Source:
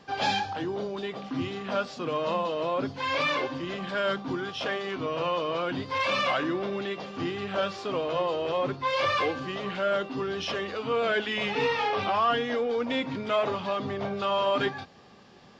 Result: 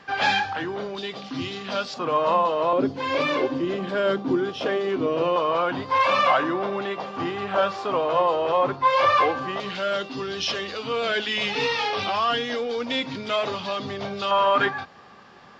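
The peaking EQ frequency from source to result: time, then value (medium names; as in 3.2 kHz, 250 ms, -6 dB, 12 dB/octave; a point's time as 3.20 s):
peaking EQ +10.5 dB 1.7 oct
1.7 kHz
from 0.95 s 4.6 kHz
from 1.94 s 950 Hz
from 2.73 s 350 Hz
from 5.36 s 930 Hz
from 9.60 s 4.9 kHz
from 14.31 s 1.3 kHz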